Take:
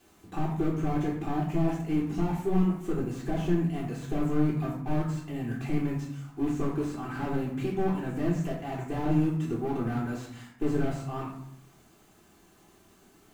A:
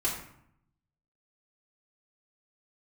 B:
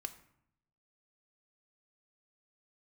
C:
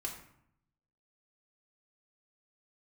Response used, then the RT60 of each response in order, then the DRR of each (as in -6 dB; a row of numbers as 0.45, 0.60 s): A; 0.70, 0.70, 0.70 s; -7.0, 8.0, -1.5 dB